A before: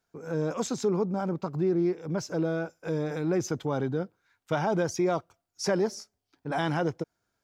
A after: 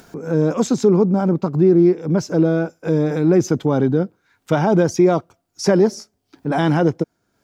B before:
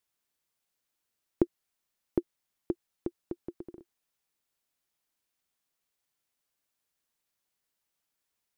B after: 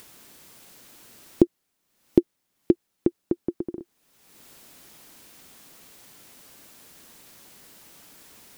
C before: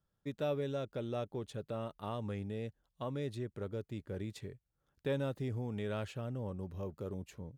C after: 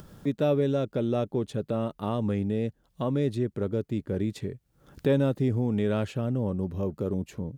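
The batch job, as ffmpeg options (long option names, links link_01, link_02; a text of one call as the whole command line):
ffmpeg -i in.wav -af "equalizer=frequency=240:width=0.61:gain=8,acompressor=mode=upward:threshold=-36dB:ratio=2.5,alimiter=level_in=7.5dB:limit=-1dB:release=50:level=0:latency=1,volume=-1dB" out.wav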